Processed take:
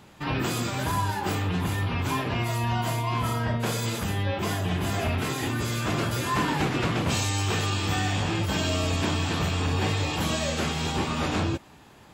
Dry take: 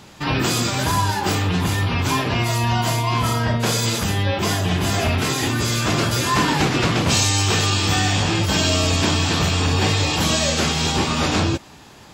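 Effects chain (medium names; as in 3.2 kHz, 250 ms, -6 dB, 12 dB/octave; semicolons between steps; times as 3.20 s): peaking EQ 5.4 kHz -7 dB 1.2 oct; trim -6.5 dB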